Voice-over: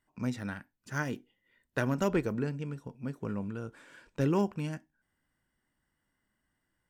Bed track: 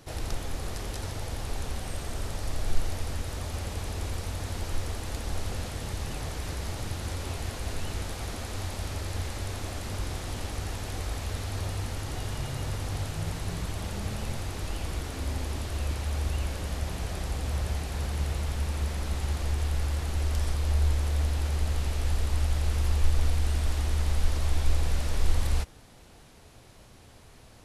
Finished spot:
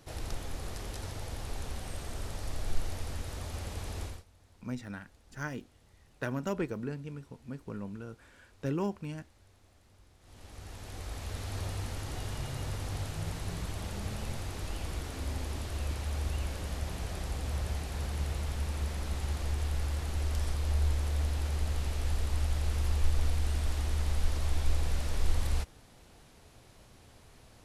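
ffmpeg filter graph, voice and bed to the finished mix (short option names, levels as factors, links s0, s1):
-filter_complex "[0:a]adelay=4450,volume=0.596[s0];[1:a]volume=8.91,afade=t=out:st=4.02:d=0.22:silence=0.0707946,afade=t=in:st=10.19:d=1.37:silence=0.0630957[s1];[s0][s1]amix=inputs=2:normalize=0"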